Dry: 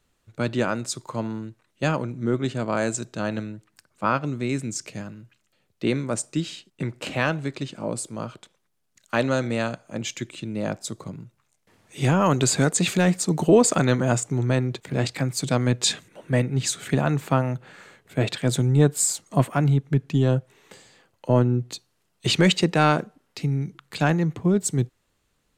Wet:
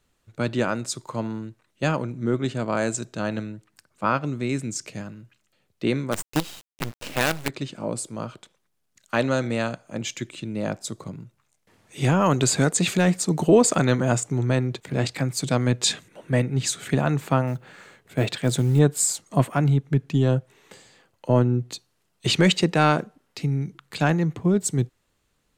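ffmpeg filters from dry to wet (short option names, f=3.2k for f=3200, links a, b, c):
-filter_complex "[0:a]asplit=3[a][b][c];[a]afade=t=out:st=6.11:d=0.02[d];[b]acrusher=bits=4:dc=4:mix=0:aa=0.000001,afade=t=in:st=6.11:d=0.02,afade=t=out:st=7.48:d=0.02[e];[c]afade=t=in:st=7.48:d=0.02[f];[d][e][f]amix=inputs=3:normalize=0,asettb=1/sr,asplit=3[g][h][i];[g]atrim=end=17.474[j];[h]atrim=start=17.47:end=18.79,asetpts=PTS-STARTPTS,afade=t=in:d=0.004:c=qsin,afade=t=out:st=1.316:d=0.004:c=qsin,acrusher=bits=8:mode=log:mix=0:aa=0.000001[k];[i]atrim=start=18.786[l];[j][k]acrossfade=d=0.004:c1=hsin:c2=qsin[m];[m][l]acrossfade=d=0.004:c1=qsin:c2=hsin"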